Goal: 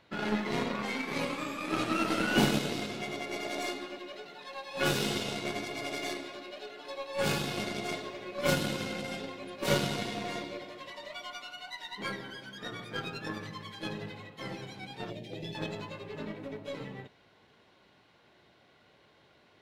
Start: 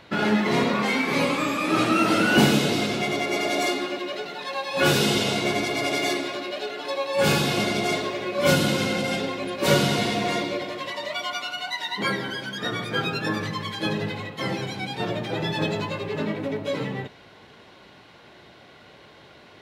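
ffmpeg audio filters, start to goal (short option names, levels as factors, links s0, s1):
-filter_complex "[0:a]asettb=1/sr,asplit=3[s0][s1][s2];[s0]atrim=end=15.104[s3];[s1]atrim=start=15.1:end=15.55,asetpts=PTS-STARTPTS,afade=t=in:d=0.004:c=qsin,afade=t=out:st=0.446:d=0.004:c=qsin,asuperstop=centerf=1200:order=4:qfactor=0.76[s4];[s2]atrim=start=15.546[s5];[s3][s4]acrossfade=d=0.004:c1=hsin:c2=qsin[s6];[s6][s5]acrossfade=d=0.004:c1=qsin:c2=hsin,aeval=exprs='0.562*(cos(1*acos(clip(val(0)/0.562,-1,1)))-cos(1*PI/2))+0.0141*(cos(6*acos(clip(val(0)/0.562,-1,1)))-cos(6*PI/2))+0.0398*(cos(7*acos(clip(val(0)/0.562,-1,1)))-cos(7*PI/2))':c=same,volume=0.422"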